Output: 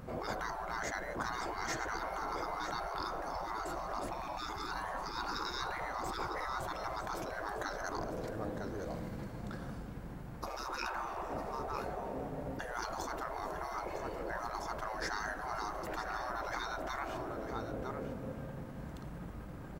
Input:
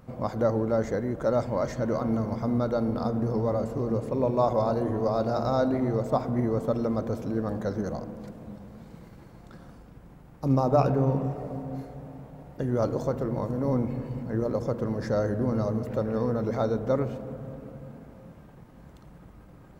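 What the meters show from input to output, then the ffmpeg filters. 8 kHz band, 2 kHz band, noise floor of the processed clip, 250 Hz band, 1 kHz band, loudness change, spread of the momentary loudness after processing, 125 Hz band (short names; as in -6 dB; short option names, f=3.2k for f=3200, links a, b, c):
n/a, +5.0 dB, -46 dBFS, -17.0 dB, -3.5 dB, -12.0 dB, 6 LU, -17.0 dB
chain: -af "equalizer=f=1.6k:w=3.9:g=3,aecho=1:1:955:0.266,afftfilt=real='re*lt(hypot(re,im),0.0631)':imag='im*lt(hypot(re,im),0.0631)':win_size=1024:overlap=0.75,volume=4dB"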